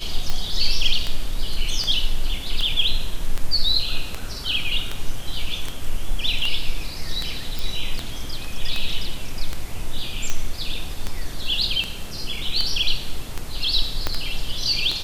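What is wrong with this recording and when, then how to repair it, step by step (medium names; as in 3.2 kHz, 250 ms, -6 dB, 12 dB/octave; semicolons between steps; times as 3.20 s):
tick 78 rpm -10 dBFS
7.59 s: pop
14.07 s: pop -7 dBFS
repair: de-click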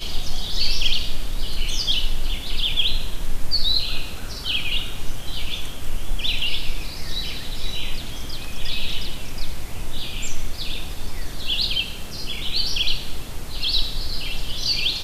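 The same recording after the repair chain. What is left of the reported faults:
14.07 s: pop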